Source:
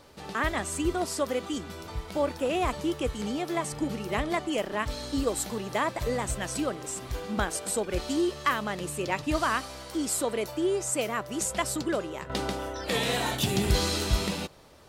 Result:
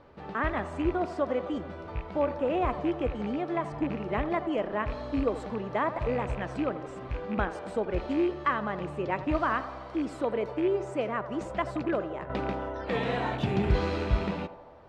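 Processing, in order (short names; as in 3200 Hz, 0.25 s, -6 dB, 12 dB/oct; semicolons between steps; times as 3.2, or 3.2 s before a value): rattling part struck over -33 dBFS, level -26 dBFS; LPF 1800 Hz 12 dB/oct; narrowing echo 85 ms, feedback 76%, band-pass 710 Hz, level -12 dB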